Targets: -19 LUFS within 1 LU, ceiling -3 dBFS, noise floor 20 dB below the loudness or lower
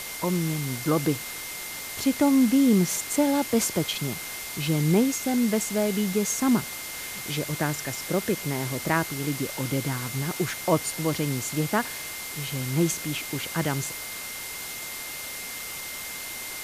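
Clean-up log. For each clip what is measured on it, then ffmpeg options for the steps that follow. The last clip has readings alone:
steady tone 2.1 kHz; tone level -40 dBFS; noise floor -36 dBFS; noise floor target -47 dBFS; loudness -26.5 LUFS; peak level -7.5 dBFS; loudness target -19.0 LUFS
-> -af "bandreject=f=2100:w=30"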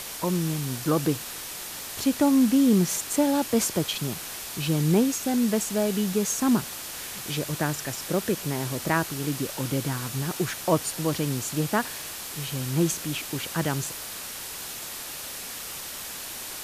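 steady tone not found; noise floor -37 dBFS; noise floor target -47 dBFS
-> -af "afftdn=nr=10:nf=-37"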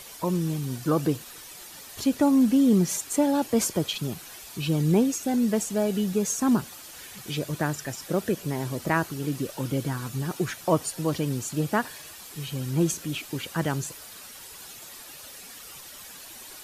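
noise floor -44 dBFS; noise floor target -47 dBFS
-> -af "afftdn=nr=6:nf=-44"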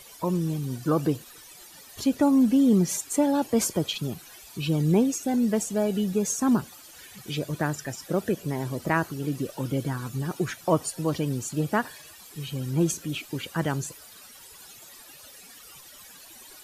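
noise floor -48 dBFS; loudness -26.5 LUFS; peak level -7.5 dBFS; loudness target -19.0 LUFS
-> -af "volume=2.37,alimiter=limit=0.708:level=0:latency=1"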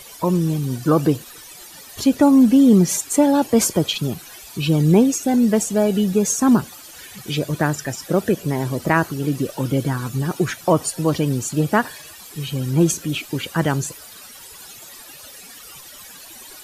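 loudness -19.0 LUFS; peak level -3.0 dBFS; noise floor -41 dBFS

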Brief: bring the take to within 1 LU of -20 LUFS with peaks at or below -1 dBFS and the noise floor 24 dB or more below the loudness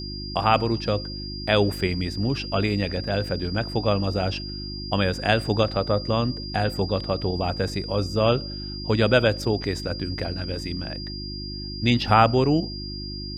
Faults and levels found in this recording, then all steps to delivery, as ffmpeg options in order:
hum 50 Hz; highest harmonic 350 Hz; hum level -32 dBFS; steady tone 4.8 kHz; tone level -35 dBFS; loudness -24.5 LUFS; peak level -3.0 dBFS; loudness target -20.0 LUFS
-> -af "bandreject=f=50:t=h:w=4,bandreject=f=100:t=h:w=4,bandreject=f=150:t=h:w=4,bandreject=f=200:t=h:w=4,bandreject=f=250:t=h:w=4,bandreject=f=300:t=h:w=4,bandreject=f=350:t=h:w=4"
-af "bandreject=f=4800:w=30"
-af "volume=1.68,alimiter=limit=0.891:level=0:latency=1"

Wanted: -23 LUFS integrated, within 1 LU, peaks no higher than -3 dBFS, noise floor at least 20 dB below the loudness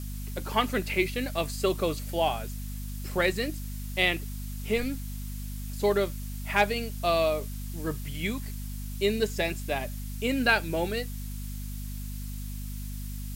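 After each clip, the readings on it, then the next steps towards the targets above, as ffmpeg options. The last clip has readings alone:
hum 50 Hz; highest harmonic 250 Hz; hum level -33 dBFS; noise floor -36 dBFS; noise floor target -50 dBFS; loudness -30.0 LUFS; peak level -10.0 dBFS; loudness target -23.0 LUFS
-> -af "bandreject=f=50:t=h:w=6,bandreject=f=100:t=h:w=6,bandreject=f=150:t=h:w=6,bandreject=f=200:t=h:w=6,bandreject=f=250:t=h:w=6"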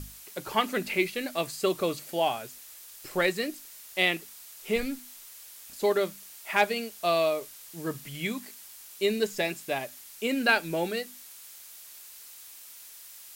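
hum not found; noise floor -48 dBFS; noise floor target -49 dBFS
-> -af "afftdn=nr=6:nf=-48"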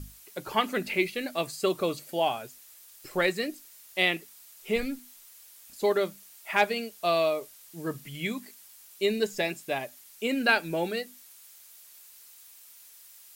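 noise floor -53 dBFS; loudness -29.0 LUFS; peak level -10.0 dBFS; loudness target -23.0 LUFS
-> -af "volume=2"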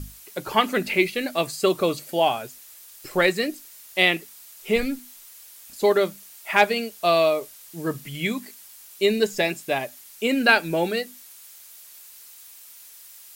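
loudness -23.0 LUFS; peak level -4.0 dBFS; noise floor -47 dBFS

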